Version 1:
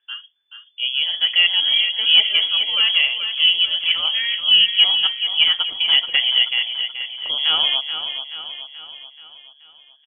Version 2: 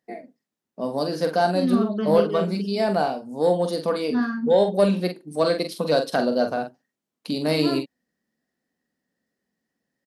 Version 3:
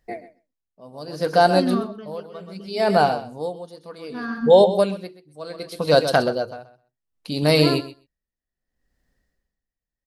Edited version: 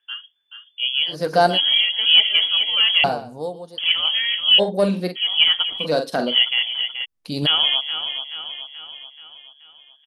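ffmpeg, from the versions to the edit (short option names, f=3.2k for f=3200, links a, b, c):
-filter_complex "[2:a]asplit=3[a][b][c];[1:a]asplit=2[d][e];[0:a]asplit=6[f][g][h][i][j][k];[f]atrim=end=1.15[l];[a]atrim=start=1.05:end=1.59[m];[g]atrim=start=1.49:end=3.042[n];[b]atrim=start=3.038:end=3.782[o];[h]atrim=start=3.778:end=4.6[p];[d]atrim=start=4.58:end=5.17[q];[i]atrim=start=5.15:end=5.87[r];[e]atrim=start=5.77:end=6.36[s];[j]atrim=start=6.26:end=7.06[t];[c]atrim=start=7.04:end=7.47[u];[k]atrim=start=7.45[v];[l][m]acrossfade=d=0.1:c1=tri:c2=tri[w];[w][n]acrossfade=d=0.1:c1=tri:c2=tri[x];[x][o]acrossfade=d=0.004:c1=hsin:c2=hsin[y];[y][p]acrossfade=d=0.004:c1=hsin:c2=hsin[z];[z][q]acrossfade=d=0.02:c1=tri:c2=tri[aa];[aa][r]acrossfade=d=0.02:c1=tri:c2=tri[ab];[ab][s]acrossfade=d=0.1:c1=tri:c2=tri[ac];[ac][t]acrossfade=d=0.1:c1=tri:c2=tri[ad];[ad][u]acrossfade=d=0.02:c1=tri:c2=tri[ae];[ae][v]acrossfade=d=0.02:c1=tri:c2=tri"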